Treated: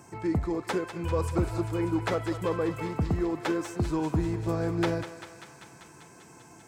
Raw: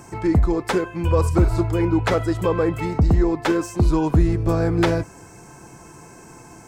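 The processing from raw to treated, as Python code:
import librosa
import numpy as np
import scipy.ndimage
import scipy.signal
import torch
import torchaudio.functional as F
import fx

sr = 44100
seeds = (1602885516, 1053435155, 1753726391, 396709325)

p1 = scipy.signal.sosfilt(scipy.signal.butter(2, 82.0, 'highpass', fs=sr, output='sos'), x)
p2 = p1 + fx.echo_thinned(p1, sr, ms=196, feedback_pct=79, hz=710.0, wet_db=-9.5, dry=0)
y = p2 * 10.0 ** (-8.5 / 20.0)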